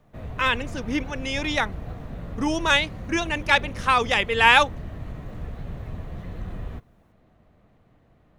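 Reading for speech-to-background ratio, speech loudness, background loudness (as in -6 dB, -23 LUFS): 15.0 dB, -22.0 LUFS, -37.0 LUFS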